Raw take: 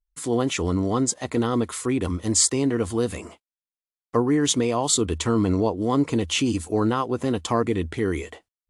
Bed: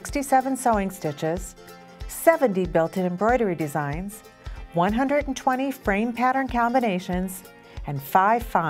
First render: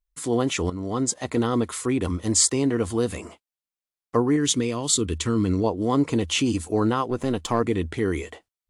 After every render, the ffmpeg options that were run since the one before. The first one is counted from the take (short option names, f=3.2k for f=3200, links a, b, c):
-filter_complex "[0:a]asettb=1/sr,asplit=3[a][b][c];[a]atrim=end=4.364[d];[b]atrim=start=4.36:end=5.64,asetpts=PTS-STARTPTS,afade=t=in:d=0.004:c=qsin,afade=t=out:st=1.276:d=0.004:c=qsin,equalizer=f=760:w=1.4:g=-12[e];[c]atrim=start=5.636[f];[d][e]acrossfade=d=0.004:c1=hsin:c2=qsin[g];[g][f]acrossfade=d=0.004:c1=qsin:c2=hsin,asettb=1/sr,asplit=3[h][i][j];[h]atrim=end=7.104[k];[i]atrim=start=7.1:end=7.6,asetpts=PTS-STARTPTS,afade=t=in:d=0.004:c=qsin,afade=t=out:st=0.496:d=0.004:c=qsin,aeval=exprs='if(lt(val(0),0),0.708*val(0),val(0))':c=same[l];[j]atrim=start=7.596[m];[k][l]acrossfade=d=0.004:c1=hsin:c2=qsin[n];[n][m]acrossfade=d=0.004:c1=qsin:c2=hsin,asplit=2[o][p];[o]atrim=end=0.7,asetpts=PTS-STARTPTS,afade=t=out:st=0.696:d=0.004:c=hsin:silence=0.237137[q];[p]atrim=start=0.7,asetpts=PTS-STARTPTS,afade=t=in:d=0.44:silence=0.237137[r];[q][r]concat=n=2:v=0:a=1"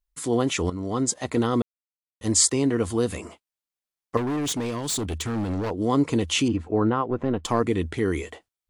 -filter_complex "[0:a]asettb=1/sr,asplit=3[a][b][c];[a]atrim=end=4.174[d];[b]atrim=start=4.17:end=5.71,asetpts=PTS-STARTPTS,afade=t=in:d=0.004:c=qsin,afade=t=out:st=1.536:d=0.004:c=qsin,asoftclip=type=hard:threshold=-24.5dB[e];[c]atrim=start=5.706[f];[d][e]acrossfade=d=0.004:c1=hsin:c2=qsin[g];[g][f]acrossfade=d=0.004:c1=qsin:c2=hsin,asettb=1/sr,asplit=3[h][i][j];[h]atrim=end=6.484[k];[i]atrim=start=6.48:end=7.44,asetpts=PTS-STARTPTS,afade=t=in:d=0.004:c=qsin,afade=t=out:st=0.956:d=0.004:c=qsin,lowpass=1.9k[l];[j]atrim=start=7.436[m];[k][l]acrossfade=d=0.004:c1=hsin:c2=qsin[n];[n][m]acrossfade=d=0.004:c1=qsin:c2=hsin,asplit=3[o][p][q];[o]atrim=end=1.62,asetpts=PTS-STARTPTS,afade=t=out:st=1.616:d=0.004:c=hsin[r];[p]atrim=start=1.62:end=2.21,asetpts=PTS-STARTPTS,volume=0[s];[q]atrim=start=2.21,asetpts=PTS-STARTPTS,afade=t=in:d=0.004:c=hsin[t];[r][s][t]concat=n=3:v=0:a=1"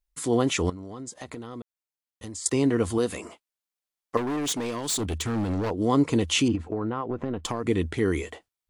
-filter_complex "[0:a]asettb=1/sr,asplit=3[a][b][c];[a]atrim=end=0.704[d];[b]atrim=start=0.7:end=2.46,asetpts=PTS-STARTPTS,afade=t=in:d=0.004:c=qsin,afade=t=out:st=1.756:d=0.004:c=qsin,acompressor=threshold=-34dB:ratio=10:attack=3.2:release=140:knee=1:detection=peak[e];[c]atrim=start=2.456[f];[d][e]acrossfade=d=0.004:c1=hsin:c2=qsin[g];[g][f]acrossfade=d=0.004:c1=qsin:c2=hsin,asettb=1/sr,asplit=3[h][i][j];[h]atrim=end=2.984[k];[i]atrim=start=2.98:end=5,asetpts=PTS-STARTPTS,afade=t=in:d=0.004:c=qsin,afade=t=out:st=2.016:d=0.004:c=qsin,equalizer=f=79:w=0.59:g=-9.5[l];[j]atrim=start=4.996[m];[k][l]acrossfade=d=0.004:c1=hsin:c2=qsin[n];[n][m]acrossfade=d=0.004:c1=qsin:c2=hsin,asettb=1/sr,asplit=3[o][p][q];[o]atrim=end=6.554[r];[p]atrim=start=6.55:end=7.66,asetpts=PTS-STARTPTS,afade=t=in:d=0.004:c=qsin,afade=t=out:st=1.106:d=0.004:c=qsin,acompressor=threshold=-24dB:ratio=6:attack=3.2:release=140:knee=1:detection=peak[s];[q]atrim=start=7.656[t];[r][s]acrossfade=d=0.004:c1=hsin:c2=qsin[u];[u][t]acrossfade=d=0.004:c1=qsin:c2=hsin"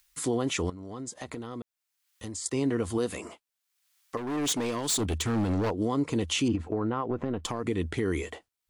-filter_complex "[0:a]acrossover=split=1100[a][b];[b]acompressor=mode=upward:threshold=-50dB:ratio=2.5[c];[a][c]amix=inputs=2:normalize=0,alimiter=limit=-18dB:level=0:latency=1:release=273"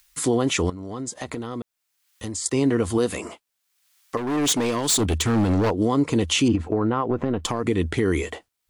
-af "volume=7dB"